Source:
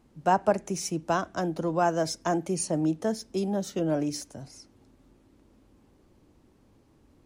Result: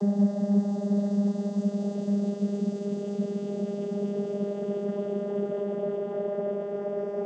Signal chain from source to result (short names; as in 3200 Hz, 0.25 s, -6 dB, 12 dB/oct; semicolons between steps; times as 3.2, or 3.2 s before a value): Paulstretch 19×, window 0.50 s, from 3.57; vocoder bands 16, saw 202 Hz; gain +1.5 dB